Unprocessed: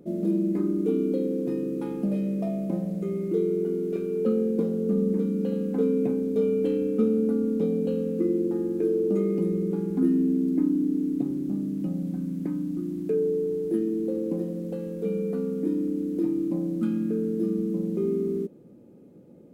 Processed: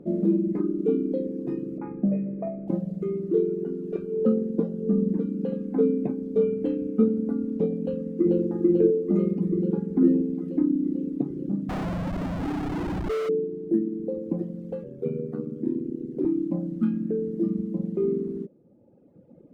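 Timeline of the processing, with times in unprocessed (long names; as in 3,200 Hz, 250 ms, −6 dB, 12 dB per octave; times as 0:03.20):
0:01.78–0:02.68: Butterworth low-pass 2,500 Hz 72 dB per octave
0:03.19–0:05.48: notch filter 2,200 Hz, Q 8.9
0:07.82–0:08.46: delay throw 440 ms, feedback 75%, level −1.5 dB
0:09.68–0:10.28: delay throw 410 ms, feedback 15%, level −10 dB
0:11.69–0:13.29: comparator with hysteresis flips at −34 dBFS
0:14.83–0:16.25: ring modulation 40 Hz
whole clip: reverb reduction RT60 2 s; low-pass filter 1,100 Hz 6 dB per octave; level +4.5 dB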